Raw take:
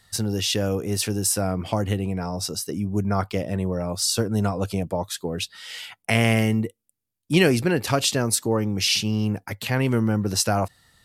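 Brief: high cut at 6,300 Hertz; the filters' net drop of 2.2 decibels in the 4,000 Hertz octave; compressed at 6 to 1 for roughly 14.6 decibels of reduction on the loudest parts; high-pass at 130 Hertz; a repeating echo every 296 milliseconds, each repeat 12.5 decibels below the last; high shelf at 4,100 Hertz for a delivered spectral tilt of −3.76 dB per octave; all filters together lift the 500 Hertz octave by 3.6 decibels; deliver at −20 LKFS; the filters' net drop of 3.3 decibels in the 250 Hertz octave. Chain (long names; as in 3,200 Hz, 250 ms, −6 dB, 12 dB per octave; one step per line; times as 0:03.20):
high-pass filter 130 Hz
low-pass filter 6,300 Hz
parametric band 250 Hz −5.5 dB
parametric band 500 Hz +6 dB
parametric band 4,000 Hz −7.5 dB
high-shelf EQ 4,100 Hz +8 dB
downward compressor 6 to 1, threshold −29 dBFS
repeating echo 296 ms, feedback 24%, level −12.5 dB
level +12.5 dB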